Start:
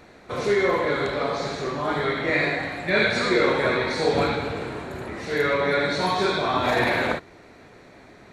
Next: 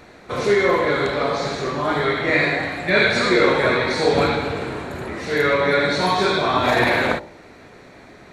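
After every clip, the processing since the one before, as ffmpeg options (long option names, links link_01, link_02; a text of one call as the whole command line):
ffmpeg -i in.wav -af "bandreject=frequency=54.39:width_type=h:width=4,bandreject=frequency=108.78:width_type=h:width=4,bandreject=frequency=163.17:width_type=h:width=4,bandreject=frequency=217.56:width_type=h:width=4,bandreject=frequency=271.95:width_type=h:width=4,bandreject=frequency=326.34:width_type=h:width=4,bandreject=frequency=380.73:width_type=h:width=4,bandreject=frequency=435.12:width_type=h:width=4,bandreject=frequency=489.51:width_type=h:width=4,bandreject=frequency=543.9:width_type=h:width=4,bandreject=frequency=598.29:width_type=h:width=4,bandreject=frequency=652.68:width_type=h:width=4,bandreject=frequency=707.07:width_type=h:width=4,bandreject=frequency=761.46:width_type=h:width=4,bandreject=frequency=815.85:width_type=h:width=4,bandreject=frequency=870.24:width_type=h:width=4,bandreject=frequency=924.63:width_type=h:width=4,bandreject=frequency=979.02:width_type=h:width=4,volume=4.5dB" out.wav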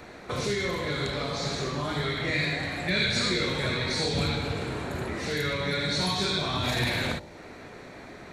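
ffmpeg -i in.wav -filter_complex "[0:a]acrossover=split=190|3000[link_01][link_02][link_03];[link_02]acompressor=threshold=-32dB:ratio=6[link_04];[link_01][link_04][link_03]amix=inputs=3:normalize=0" out.wav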